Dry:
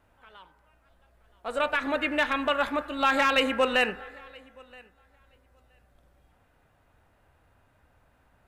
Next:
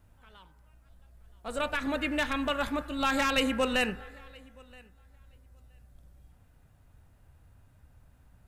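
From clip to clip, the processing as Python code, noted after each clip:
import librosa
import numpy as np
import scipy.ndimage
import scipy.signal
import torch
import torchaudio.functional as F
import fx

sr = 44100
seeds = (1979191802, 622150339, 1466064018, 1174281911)

y = fx.bass_treble(x, sr, bass_db=14, treble_db=10)
y = y * 10.0 ** (-5.5 / 20.0)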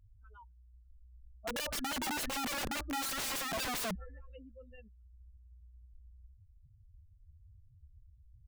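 y = fx.spec_expand(x, sr, power=3.8)
y = (np.mod(10.0 ** (32.0 / 20.0) * y + 1.0, 2.0) - 1.0) / 10.0 ** (32.0 / 20.0)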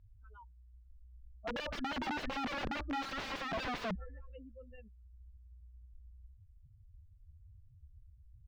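y = fx.air_absorb(x, sr, metres=240.0)
y = y * 10.0 ** (1.0 / 20.0)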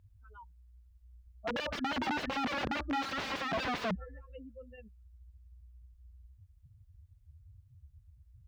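y = scipy.signal.sosfilt(scipy.signal.butter(2, 64.0, 'highpass', fs=sr, output='sos'), x)
y = y * 10.0 ** (4.0 / 20.0)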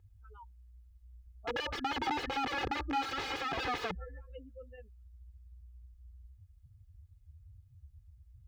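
y = x + 0.74 * np.pad(x, (int(2.4 * sr / 1000.0), 0))[:len(x)]
y = y * 10.0 ** (-2.0 / 20.0)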